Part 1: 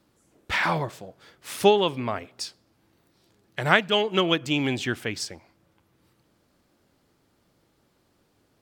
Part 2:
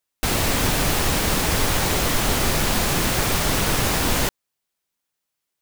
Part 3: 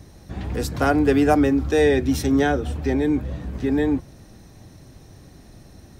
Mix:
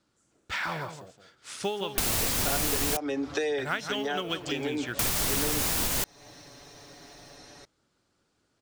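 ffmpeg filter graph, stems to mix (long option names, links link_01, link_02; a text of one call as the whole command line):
ffmpeg -i stem1.wav -i stem2.wav -i stem3.wav -filter_complex "[0:a]lowpass=frequency=8300:width=0.5412,lowpass=frequency=8300:width=1.3066,equalizer=frequency=1400:width_type=o:width=0.3:gain=6.5,acrusher=bits=9:mode=log:mix=0:aa=0.000001,volume=-8.5dB,asplit=3[link_01][link_02][link_03];[link_02]volume=-10dB[link_04];[1:a]alimiter=limit=-11.5dB:level=0:latency=1:release=305,adelay=1750,volume=1.5dB,asplit=3[link_05][link_06][link_07];[link_05]atrim=end=2.97,asetpts=PTS-STARTPTS,afade=type=out:start_time=2.966:duration=0.004:curve=hsin[link_08];[link_06]atrim=start=2.97:end=4.99,asetpts=PTS-STARTPTS,volume=0[link_09];[link_07]atrim=start=4.99,asetpts=PTS-STARTPTS,afade=type=in:duration=0.004:curve=hsin[link_10];[link_08][link_09][link_10]concat=n=3:v=0:a=1[link_11];[2:a]acrossover=split=380 6500:gain=0.141 1 0.0708[link_12][link_13][link_14];[link_12][link_13][link_14]amix=inputs=3:normalize=0,aecho=1:1:7:0.7,acompressor=threshold=-22dB:ratio=6,adelay=1650,volume=2dB[link_15];[link_03]apad=whole_len=337439[link_16];[link_15][link_16]sidechaincompress=threshold=-35dB:ratio=4:attack=26:release=359[link_17];[link_04]aecho=0:1:167:1[link_18];[link_01][link_11][link_17][link_18]amix=inputs=4:normalize=0,highshelf=frequency=4400:gain=10,acompressor=threshold=-28dB:ratio=3" out.wav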